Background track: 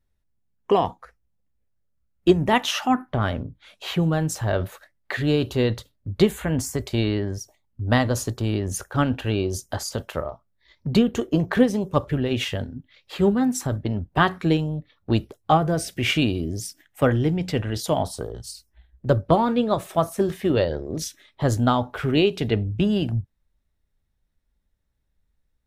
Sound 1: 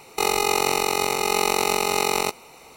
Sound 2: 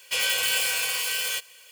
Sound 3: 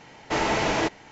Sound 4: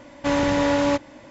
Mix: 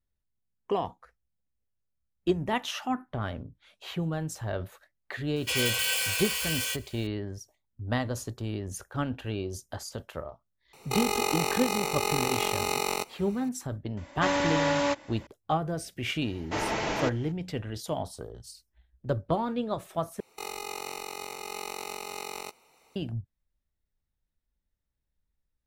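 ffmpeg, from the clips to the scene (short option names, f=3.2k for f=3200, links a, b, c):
-filter_complex "[1:a]asplit=2[a][b];[0:a]volume=-9.5dB[c];[4:a]lowshelf=f=440:g=-10.5[d];[b]equalizer=f=110:w=0.32:g=-4[e];[c]asplit=2[f][g];[f]atrim=end=20.204[h];[e]atrim=end=2.76,asetpts=PTS-STARTPTS,volume=-15.5dB[i];[g]atrim=start=22.956[j];[2:a]atrim=end=1.71,asetpts=PTS-STARTPTS,volume=-3.5dB,afade=t=in:d=0.004:c=hsin,afade=t=out:st=1.706:d=0.004:c=hsin,adelay=5360[k];[a]atrim=end=2.76,asetpts=PTS-STARTPTS,volume=-7dB,afade=t=in:d=0.004:c=hsin,afade=t=out:st=2.756:d=0.004:c=hsin,adelay=10730[l];[d]atrim=end=1.3,asetpts=PTS-STARTPTS,volume=-1.5dB,afade=t=in:d=0.004:c=hsin,afade=t=out:st=1.296:d=0.004:c=hsin,adelay=13970[m];[3:a]atrim=end=1.11,asetpts=PTS-STARTPTS,volume=-6dB,afade=t=in:d=0.004:c=hsin,afade=t=out:st=1.106:d=0.004:c=hsin,adelay=16210[n];[h][i]acrossfade=d=0.004:c1=hsin:c2=hsin[o];[o][j]acrossfade=d=0.004:c1=hsin:c2=hsin[p];[p][k][l][m][n]amix=inputs=5:normalize=0"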